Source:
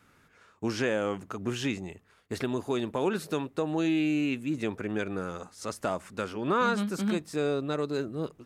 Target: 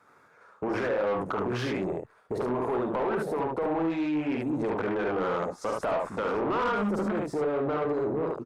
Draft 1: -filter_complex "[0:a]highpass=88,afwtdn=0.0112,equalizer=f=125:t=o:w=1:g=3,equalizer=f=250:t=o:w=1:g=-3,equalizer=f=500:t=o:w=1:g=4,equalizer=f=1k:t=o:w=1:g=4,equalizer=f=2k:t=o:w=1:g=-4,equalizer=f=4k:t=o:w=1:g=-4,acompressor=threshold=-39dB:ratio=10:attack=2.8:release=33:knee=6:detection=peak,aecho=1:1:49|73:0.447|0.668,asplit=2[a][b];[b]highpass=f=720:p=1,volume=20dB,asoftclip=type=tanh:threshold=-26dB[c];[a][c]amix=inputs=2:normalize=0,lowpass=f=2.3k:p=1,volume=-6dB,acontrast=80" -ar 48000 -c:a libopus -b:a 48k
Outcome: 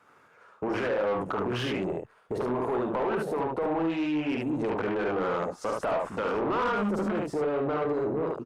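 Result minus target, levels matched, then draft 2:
4000 Hz band +3.0 dB
-filter_complex "[0:a]highpass=88,afwtdn=0.0112,equalizer=f=125:t=o:w=1:g=3,equalizer=f=250:t=o:w=1:g=-3,equalizer=f=500:t=o:w=1:g=4,equalizer=f=1k:t=o:w=1:g=4,equalizer=f=2k:t=o:w=1:g=-4,equalizer=f=4k:t=o:w=1:g=-4,acompressor=threshold=-39dB:ratio=10:attack=2.8:release=33:knee=6:detection=peak,equalizer=f=2.9k:t=o:w=0.26:g=-10,aecho=1:1:49|73:0.447|0.668,asplit=2[a][b];[b]highpass=f=720:p=1,volume=20dB,asoftclip=type=tanh:threshold=-26dB[c];[a][c]amix=inputs=2:normalize=0,lowpass=f=2.3k:p=1,volume=-6dB,acontrast=80" -ar 48000 -c:a libopus -b:a 48k

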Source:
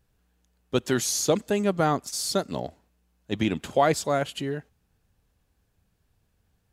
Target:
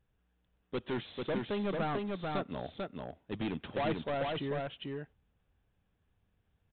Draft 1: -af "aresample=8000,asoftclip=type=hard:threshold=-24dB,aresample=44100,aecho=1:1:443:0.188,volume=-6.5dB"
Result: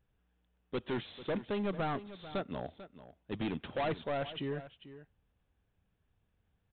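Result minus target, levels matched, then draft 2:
echo-to-direct -11.5 dB
-af "aresample=8000,asoftclip=type=hard:threshold=-24dB,aresample=44100,aecho=1:1:443:0.708,volume=-6.5dB"

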